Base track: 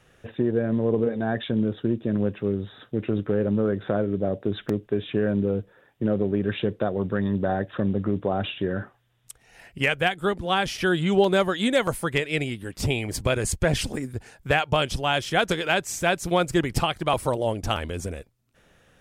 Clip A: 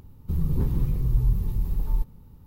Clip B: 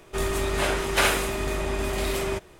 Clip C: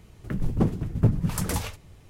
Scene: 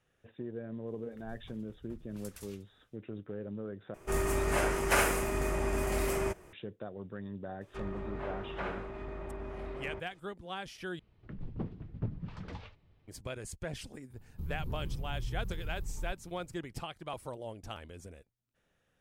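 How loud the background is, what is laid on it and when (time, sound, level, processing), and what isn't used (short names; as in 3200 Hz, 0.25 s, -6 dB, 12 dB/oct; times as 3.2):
base track -17.5 dB
0.87 add C -17.5 dB + passive tone stack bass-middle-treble 10-0-10
3.94 replace with B -4 dB + bell 3700 Hz -12.5 dB 0.67 oct
7.61 add B -13.5 dB + treble ducked by the level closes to 1400 Hz, closed at -23 dBFS
10.99 replace with C -15.5 dB + LPF 4000 Hz 24 dB/oct
14.1 add A -9 dB + compressor 2:1, threshold -28 dBFS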